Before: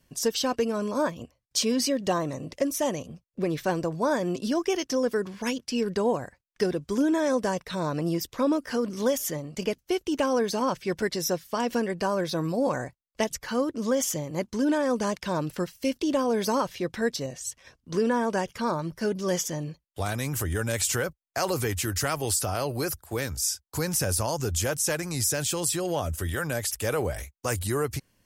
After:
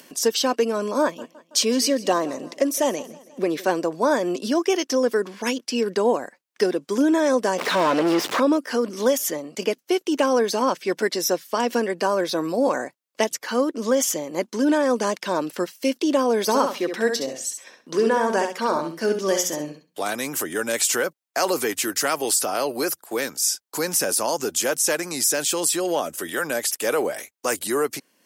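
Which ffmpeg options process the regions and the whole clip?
-filter_complex "[0:a]asettb=1/sr,asplit=3[s0][s1][s2];[s0]atrim=end=1.024[s3];[s1]atrim=start=1.02:end=3.67,asetpts=PTS-STARTPTS,afade=t=in:d=0.004:c=qsin,afade=t=out:st=2.646:d=0.004:c=qsin,highpass=51,aecho=1:1:163|326|489|652:0.106|0.0487|0.0224|0.0103,atrim=end_sample=116865[s4];[s2]atrim=start=3.666[s5];[s3][s4]acrossfade=d=0.004:c1=hsin:c2=qsin[s6];[s6][s5]acrossfade=d=0.004:c1=qsin:c2=hsin,asettb=1/sr,asplit=3[s7][s8][s9];[s7]atrim=end=7.584[s10];[s8]atrim=start=7.58:end=8.4,asetpts=PTS-STARTPTS,afade=t=in:d=0.004:c=qsin,afade=t=out:st=0.816:d=0.004:c=qsin,aeval=exprs='val(0)+0.5*0.0126*sgn(val(0))':c=same,asubboost=boost=9:cutoff=140,asplit=2[s11][s12];[s12]highpass=f=720:p=1,volume=25.1,asoftclip=type=tanh:threshold=0.141[s13];[s11][s13]amix=inputs=2:normalize=0,lowpass=f=1800:p=1,volume=0.501[s14];[s9]atrim=start=8.396[s15];[s10][s14]acrossfade=d=0.004:c1=hsin:c2=qsin[s16];[s16][s15]acrossfade=d=0.004:c1=qsin:c2=hsin,asettb=1/sr,asplit=3[s17][s18][s19];[s17]atrim=end=16.424[s20];[s18]atrim=start=16.42:end=20.04,asetpts=PTS-STARTPTS,afade=t=in:d=0.004:c=qsin,afade=t=out:st=3.616:d=0.004:c=qsin,bandreject=f=60:t=h:w=6,bandreject=f=120:t=h:w=6,bandreject=f=180:t=h:w=6,bandreject=f=240:t=h:w=6,aecho=1:1:67|134|201:0.473|0.0852|0.0153,atrim=end_sample=159642[s21];[s19]atrim=start=20.036[s22];[s20][s21]acrossfade=d=0.004:c1=hsin:c2=qsin[s23];[s23][s22]acrossfade=d=0.004:c1=qsin:c2=hsin,highpass=f=240:w=0.5412,highpass=f=240:w=1.3066,acompressor=mode=upward:threshold=0.00708:ratio=2.5,volume=1.88"

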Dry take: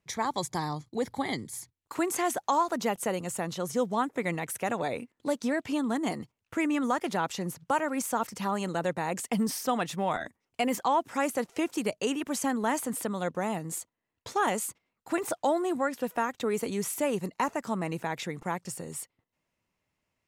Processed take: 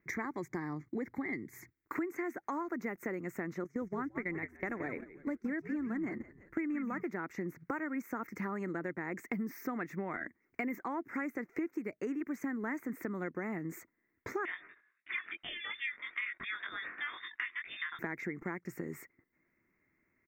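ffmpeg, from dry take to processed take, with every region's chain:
-filter_complex "[0:a]asettb=1/sr,asplit=3[s0][s1][s2];[s0]atrim=end=3.644[s3];[s1]atrim=start=3.64:end=7.03,asetpts=PTS-STARTPTS,afade=t=in:d=0.004:c=qsin,afade=t=out:st=3.386:d=0.004:c=qsin,acrossover=split=7800[s4][s5];[s5]acompressor=threshold=0.00316:ratio=4:attack=1:release=60[s6];[s4][s6]amix=inputs=2:normalize=0,asplit=5[s7][s8][s9][s10][s11];[s8]adelay=172,afreqshift=-83,volume=0.335[s12];[s9]adelay=344,afreqshift=-166,volume=0.127[s13];[s10]adelay=516,afreqshift=-249,volume=0.0484[s14];[s11]adelay=688,afreqshift=-332,volume=0.0184[s15];[s7][s12][s13][s14][s15]amix=inputs=5:normalize=0,atrim=end_sample=149499,agate=range=0.178:threshold=0.0178:ratio=16:release=100:detection=peak[s16];[s2]atrim=start=7.026[s17];[s3][s16]acrossfade=d=0.004:c1=hsin:c2=qsin[s18];[s18][s17]acrossfade=d=0.004:c1=qsin:c2=hsin,asettb=1/sr,asplit=3[s19][s20][s21];[s19]atrim=end=14.454[s22];[s20]atrim=start=14.45:end=17.99,asetpts=PTS-STARTPTS,afade=t=in:d=0.004:c=qsin,afade=t=out:st=3.536:d=0.004:c=qsin,asplit=2[s23][s24];[s24]adelay=22,volume=0.75[s25];[s23][s25]amix=inputs=2:normalize=0,atrim=end_sample=156114,lowpass=f=3200:t=q:w=0.5098,lowpass=f=3200:t=q:w=0.6013,lowpass=f=3200:t=q:w=0.9,lowpass=f=3200:t=q:w=2.563,afreqshift=-3800[s26];[s21]atrim=start=17.986[s27];[s22][s26]acrossfade=d=0.004:c1=hsin:c2=qsin[s28];[s28][s27]acrossfade=d=0.004:c1=qsin:c2=hsin,firequalizer=gain_entry='entry(110,0);entry(340,12);entry(500,-1);entry(850,-4);entry(1300,5);entry(2100,12);entry(3000,-23);entry(6200,-9);entry(10000,-24);entry(15000,7)':delay=0.05:min_phase=1,acompressor=threshold=0.0158:ratio=5"

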